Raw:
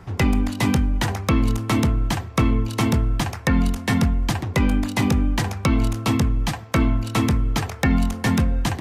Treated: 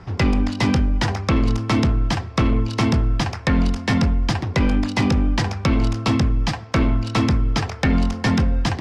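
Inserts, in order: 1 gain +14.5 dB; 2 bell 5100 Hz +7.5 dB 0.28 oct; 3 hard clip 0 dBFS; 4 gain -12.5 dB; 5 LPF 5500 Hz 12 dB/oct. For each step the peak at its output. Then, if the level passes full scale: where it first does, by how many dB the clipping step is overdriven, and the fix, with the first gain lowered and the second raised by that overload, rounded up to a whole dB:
+4.5, +7.5, 0.0, -12.5, -12.0 dBFS; step 1, 7.5 dB; step 1 +6.5 dB, step 4 -4.5 dB

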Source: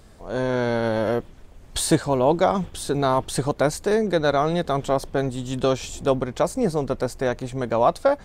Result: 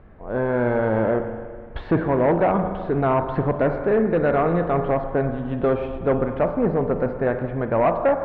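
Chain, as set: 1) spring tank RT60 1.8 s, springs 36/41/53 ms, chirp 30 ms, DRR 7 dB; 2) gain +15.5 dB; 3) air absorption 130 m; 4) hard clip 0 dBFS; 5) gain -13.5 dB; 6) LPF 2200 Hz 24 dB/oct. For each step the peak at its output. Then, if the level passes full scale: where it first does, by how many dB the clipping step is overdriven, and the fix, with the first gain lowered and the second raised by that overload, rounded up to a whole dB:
-5.5, +10.0, +9.5, 0.0, -13.5, -12.0 dBFS; step 2, 9.5 dB; step 2 +5.5 dB, step 5 -3.5 dB

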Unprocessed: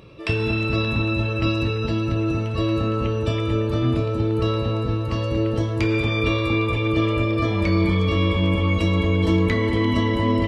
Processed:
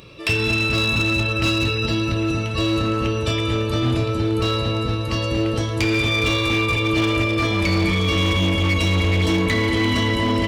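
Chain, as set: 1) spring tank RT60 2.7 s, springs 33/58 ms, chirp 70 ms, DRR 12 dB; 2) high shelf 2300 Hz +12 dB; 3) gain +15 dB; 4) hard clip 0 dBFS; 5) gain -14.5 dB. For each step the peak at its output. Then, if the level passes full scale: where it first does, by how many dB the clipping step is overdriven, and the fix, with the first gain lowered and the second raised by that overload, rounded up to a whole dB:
-7.5, -5.0, +10.0, 0.0, -14.5 dBFS; step 3, 10.0 dB; step 3 +5 dB, step 5 -4.5 dB

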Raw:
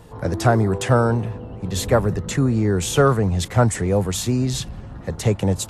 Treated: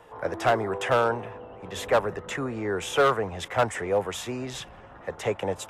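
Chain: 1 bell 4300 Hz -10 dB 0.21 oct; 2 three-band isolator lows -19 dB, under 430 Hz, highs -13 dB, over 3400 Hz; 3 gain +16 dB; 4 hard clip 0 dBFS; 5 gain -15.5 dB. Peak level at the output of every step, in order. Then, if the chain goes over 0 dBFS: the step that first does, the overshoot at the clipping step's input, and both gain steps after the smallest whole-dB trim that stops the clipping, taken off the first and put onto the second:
-3.5, -7.5, +8.5, 0.0, -15.5 dBFS; step 3, 8.5 dB; step 3 +7 dB, step 5 -6.5 dB

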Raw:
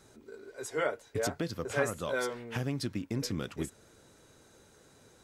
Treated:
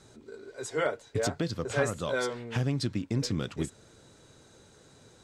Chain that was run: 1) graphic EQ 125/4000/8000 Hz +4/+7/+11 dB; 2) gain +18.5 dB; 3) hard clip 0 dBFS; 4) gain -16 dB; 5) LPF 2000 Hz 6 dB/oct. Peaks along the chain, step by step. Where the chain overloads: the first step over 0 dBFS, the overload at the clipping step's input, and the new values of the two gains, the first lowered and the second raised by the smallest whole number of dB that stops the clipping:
-13.5, +5.0, 0.0, -16.0, -16.0 dBFS; step 2, 5.0 dB; step 2 +13.5 dB, step 4 -11 dB

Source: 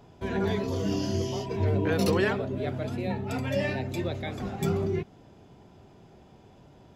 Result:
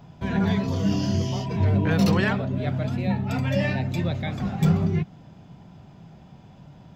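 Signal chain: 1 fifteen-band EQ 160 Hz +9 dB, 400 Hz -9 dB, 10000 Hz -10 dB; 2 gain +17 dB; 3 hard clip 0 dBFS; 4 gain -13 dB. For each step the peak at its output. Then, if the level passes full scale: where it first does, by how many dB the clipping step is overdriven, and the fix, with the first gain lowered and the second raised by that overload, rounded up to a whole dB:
-11.5, +5.5, 0.0, -13.0 dBFS; step 2, 5.5 dB; step 2 +11 dB, step 4 -7 dB

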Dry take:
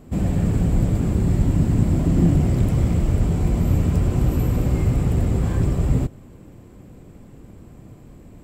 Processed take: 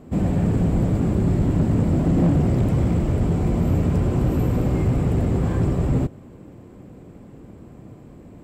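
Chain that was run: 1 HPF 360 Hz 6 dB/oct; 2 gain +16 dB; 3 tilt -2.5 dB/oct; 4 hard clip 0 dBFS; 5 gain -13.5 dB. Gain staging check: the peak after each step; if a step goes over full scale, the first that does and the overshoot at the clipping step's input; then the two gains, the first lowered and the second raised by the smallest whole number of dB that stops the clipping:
-13.0, +3.0, +9.0, 0.0, -13.5 dBFS; step 2, 9.0 dB; step 2 +7 dB, step 5 -4.5 dB

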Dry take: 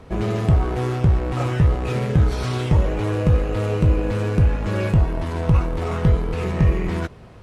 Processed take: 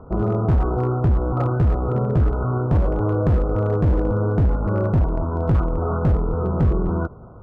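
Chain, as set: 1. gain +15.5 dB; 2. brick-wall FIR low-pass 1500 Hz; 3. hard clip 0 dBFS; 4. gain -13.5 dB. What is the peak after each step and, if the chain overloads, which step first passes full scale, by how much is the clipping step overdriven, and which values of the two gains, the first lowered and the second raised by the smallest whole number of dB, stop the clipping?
+9.0, +9.0, 0.0, -13.5 dBFS; step 1, 9.0 dB; step 1 +6.5 dB, step 4 -4.5 dB

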